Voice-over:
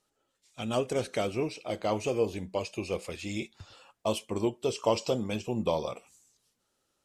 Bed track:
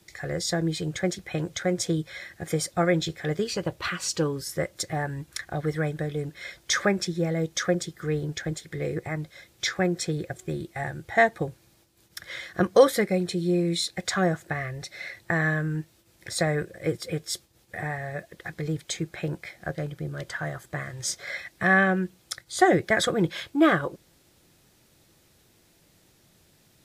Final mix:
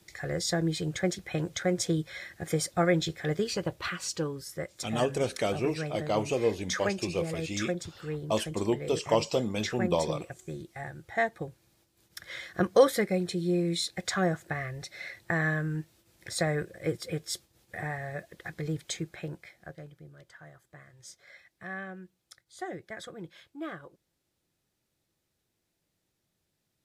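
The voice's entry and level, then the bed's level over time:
4.25 s, +1.0 dB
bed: 3.53 s -2 dB
4.52 s -8 dB
11.48 s -8 dB
12.36 s -3.5 dB
18.91 s -3.5 dB
20.22 s -19 dB

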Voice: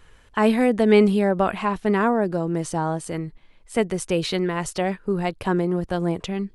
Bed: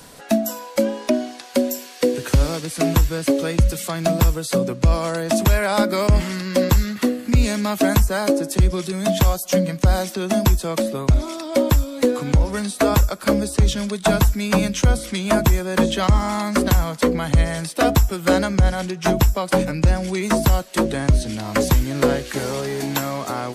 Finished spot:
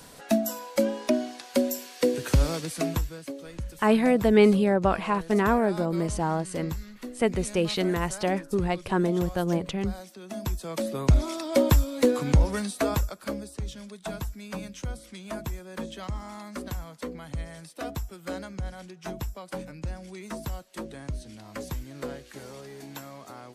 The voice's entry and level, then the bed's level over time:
3.45 s, -2.5 dB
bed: 2.68 s -5 dB
3.33 s -19.5 dB
10.21 s -19.5 dB
11.08 s -3.5 dB
12.45 s -3.5 dB
13.57 s -18 dB

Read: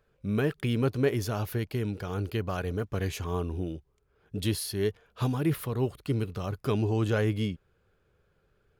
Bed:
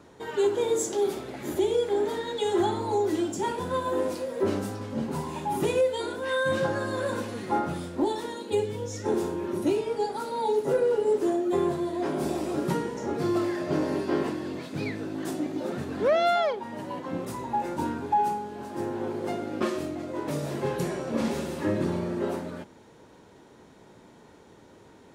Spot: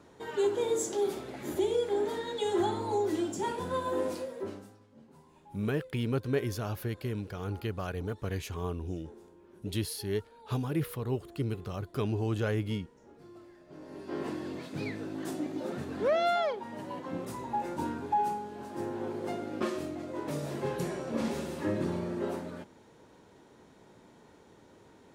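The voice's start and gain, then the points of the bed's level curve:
5.30 s, -4.0 dB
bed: 4.2 s -4 dB
4.87 s -26 dB
13.66 s -26 dB
14.33 s -4.5 dB

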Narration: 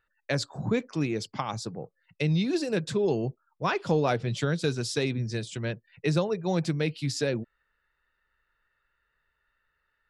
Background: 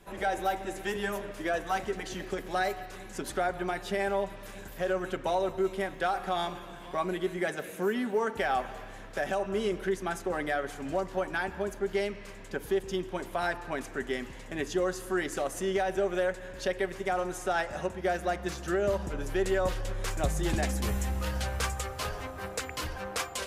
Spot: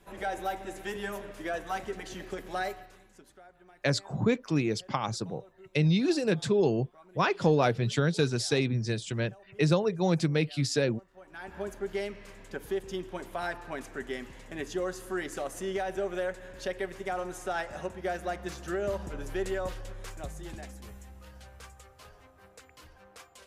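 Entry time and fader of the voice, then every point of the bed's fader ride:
3.55 s, +1.0 dB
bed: 2.67 s -3.5 dB
3.41 s -25 dB
11.12 s -25 dB
11.58 s -3.5 dB
19.41 s -3.5 dB
21.08 s -18 dB

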